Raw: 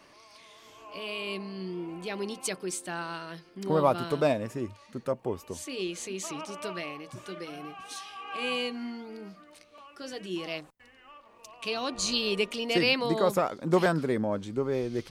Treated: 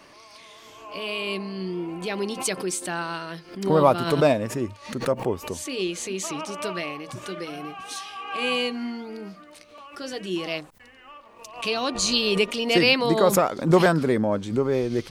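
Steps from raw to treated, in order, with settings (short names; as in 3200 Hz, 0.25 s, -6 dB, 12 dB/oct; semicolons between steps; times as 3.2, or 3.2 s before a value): backwards sustainer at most 130 dB/s; gain +6 dB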